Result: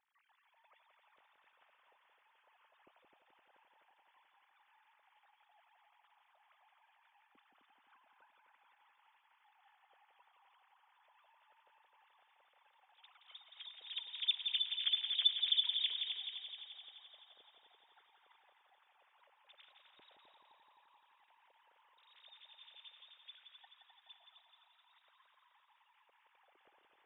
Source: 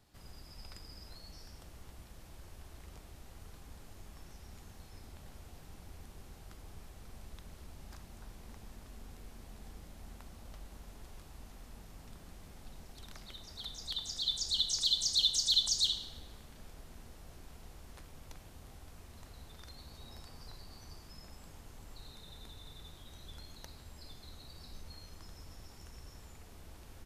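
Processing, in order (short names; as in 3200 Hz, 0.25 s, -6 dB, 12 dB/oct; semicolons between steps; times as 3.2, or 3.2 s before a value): sine-wave speech; multi-head echo 86 ms, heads second and third, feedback 64%, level -6.5 dB; gain -7 dB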